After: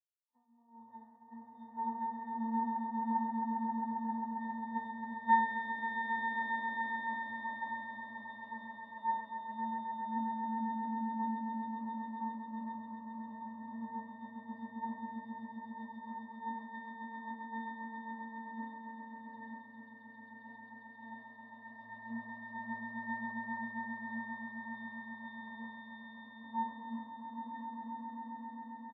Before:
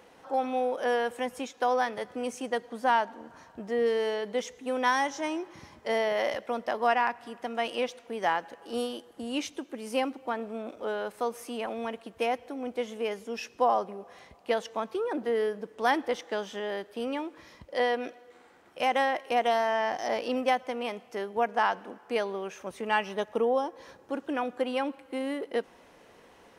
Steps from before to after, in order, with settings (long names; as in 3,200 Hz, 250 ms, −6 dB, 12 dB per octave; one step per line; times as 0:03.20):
gain on one half-wave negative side −7 dB
low-pass filter 3,800 Hz
downward expander −45 dBFS
high-pass filter 370 Hz 12 dB per octave
comb filter 1 ms, depth 78%
downward compressor 6 to 1, threshold −36 dBFS, peak gain reduction 16 dB
phaser with its sweep stopped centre 1,100 Hz, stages 4
resonances in every octave B, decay 0.68 s
echo that builds up and dies away 123 ms, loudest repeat 8, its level −3.5 dB
wrong playback speed 48 kHz file played as 44.1 kHz
multiband upward and downward expander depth 100%
level +14.5 dB